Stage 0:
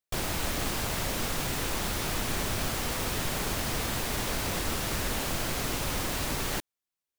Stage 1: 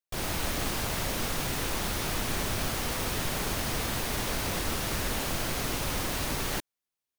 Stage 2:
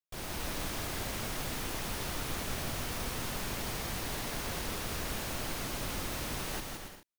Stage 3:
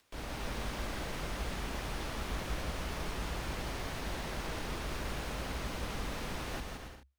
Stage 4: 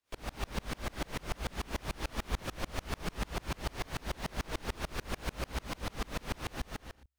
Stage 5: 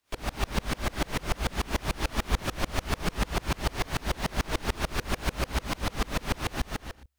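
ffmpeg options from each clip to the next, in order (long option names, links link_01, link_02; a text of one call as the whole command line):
ffmpeg -i in.wav -af "bandreject=frequency=7500:width=24,dynaudnorm=framelen=110:gausssize=3:maxgain=5.5dB,volume=-5.5dB" out.wav
ffmpeg -i in.wav -af "aecho=1:1:170|280.5|352.3|399|429.4:0.631|0.398|0.251|0.158|0.1,volume=-8dB" out.wav
ffmpeg -i in.wav -af "aemphasis=mode=reproduction:type=50kf,acompressor=mode=upward:threshold=-49dB:ratio=2.5,afreqshift=-68" out.wav
ffmpeg -i in.wav -af "aeval=exprs='val(0)*pow(10,-32*if(lt(mod(-6.8*n/s,1),2*abs(-6.8)/1000),1-mod(-6.8*n/s,1)/(2*abs(-6.8)/1000),(mod(-6.8*n/s,1)-2*abs(-6.8)/1000)/(1-2*abs(-6.8)/1000))/20)':channel_layout=same,volume=8dB" out.wav
ffmpeg -i in.wav -af "bandreject=frequency=500:width=12,volume=8dB" out.wav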